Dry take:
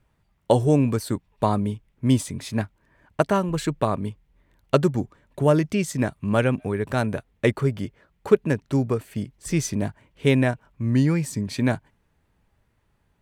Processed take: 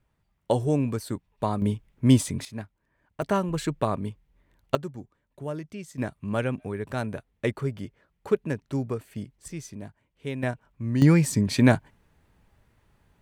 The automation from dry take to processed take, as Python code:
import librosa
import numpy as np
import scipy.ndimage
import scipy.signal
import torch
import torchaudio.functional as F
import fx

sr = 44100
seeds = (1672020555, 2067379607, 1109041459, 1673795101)

y = fx.gain(x, sr, db=fx.steps((0.0, -5.5), (1.62, 1.5), (2.45, -11.0), (3.22, -3.0), (4.75, -15.0), (5.98, -6.5), (9.48, -14.0), (10.43, -5.5), (11.02, 4.0)))